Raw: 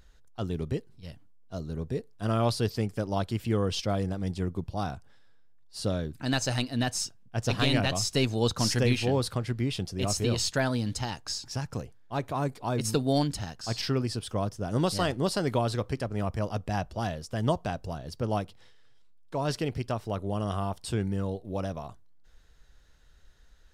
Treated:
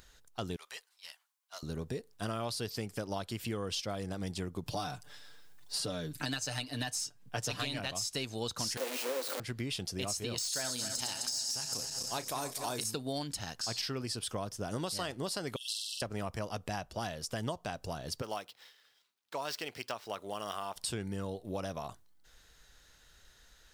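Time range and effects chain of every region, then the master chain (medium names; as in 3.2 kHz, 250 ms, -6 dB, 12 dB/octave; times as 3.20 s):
0.56–1.63 s: high-pass 880 Hz 24 dB/octave + valve stage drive 38 dB, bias 0.4
4.66–7.79 s: comb 6.8 ms, depth 66% + three bands compressed up and down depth 40%
8.77–9.40 s: one-bit comparator + steep high-pass 240 Hz 72 dB/octave + peaking EQ 530 Hz +12.5 dB 0.25 oct
10.38–12.84 s: backward echo that repeats 127 ms, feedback 71%, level -10.5 dB + tone controls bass -5 dB, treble +15 dB + doubling 32 ms -13.5 dB
15.56–16.02 s: brick-wall FIR high-pass 2.6 kHz + flutter echo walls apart 8.1 m, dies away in 1.1 s
18.22–20.76 s: median filter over 5 samples + high-pass 890 Hz 6 dB/octave
whole clip: de-esser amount 50%; tilt EQ +2 dB/octave; compression 6:1, threshold -37 dBFS; trim +3 dB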